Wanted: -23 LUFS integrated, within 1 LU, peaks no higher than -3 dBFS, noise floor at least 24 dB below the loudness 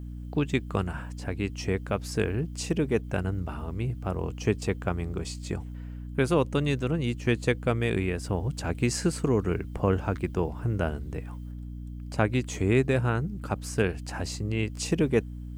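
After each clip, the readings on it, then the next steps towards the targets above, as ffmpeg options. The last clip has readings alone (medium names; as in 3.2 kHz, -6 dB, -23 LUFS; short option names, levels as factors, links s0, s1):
hum 60 Hz; highest harmonic 300 Hz; hum level -35 dBFS; loudness -29.0 LUFS; peak level -10.0 dBFS; loudness target -23.0 LUFS
-> -af "bandreject=f=60:t=h:w=4,bandreject=f=120:t=h:w=4,bandreject=f=180:t=h:w=4,bandreject=f=240:t=h:w=4,bandreject=f=300:t=h:w=4"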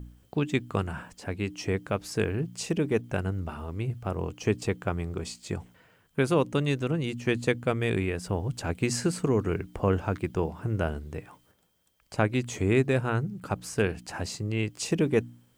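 hum not found; loudness -29.5 LUFS; peak level -10.5 dBFS; loudness target -23.0 LUFS
-> -af "volume=2.11"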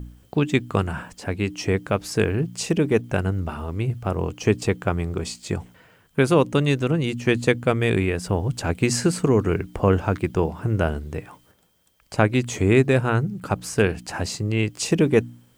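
loudness -23.0 LUFS; peak level -4.0 dBFS; noise floor -59 dBFS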